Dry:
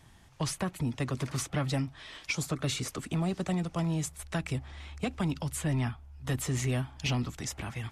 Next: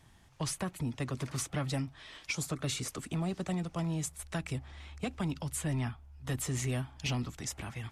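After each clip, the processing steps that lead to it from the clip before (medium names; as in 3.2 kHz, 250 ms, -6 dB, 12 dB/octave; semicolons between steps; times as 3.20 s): dynamic bell 9.4 kHz, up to +4 dB, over -49 dBFS, Q 0.84; trim -3.5 dB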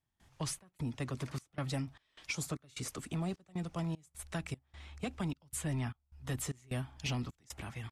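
trance gate ".xx.xxx.xx" 76 bpm -24 dB; trim -2.5 dB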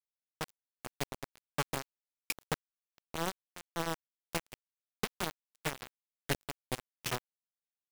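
bit crusher 5-bit; upward expansion 2.5:1, over -50 dBFS; trim +5.5 dB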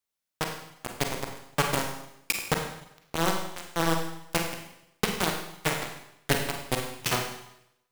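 Schroeder reverb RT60 0.8 s, combs from 33 ms, DRR 2.5 dB; trim +8 dB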